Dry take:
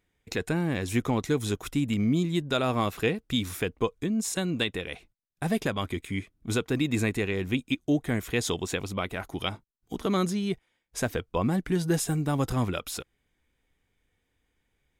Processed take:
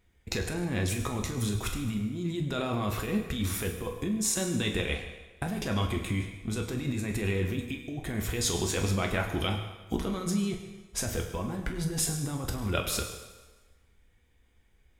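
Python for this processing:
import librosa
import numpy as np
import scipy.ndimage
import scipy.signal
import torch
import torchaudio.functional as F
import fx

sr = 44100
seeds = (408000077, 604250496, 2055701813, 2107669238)

y = fx.low_shelf(x, sr, hz=80.0, db=11.5)
y = fx.over_compress(y, sr, threshold_db=-30.0, ratio=-1.0)
y = fx.rev_fdn(y, sr, rt60_s=1.3, lf_ratio=0.8, hf_ratio=0.9, size_ms=84.0, drr_db=2.0)
y = y * 10.0 ** (-1.5 / 20.0)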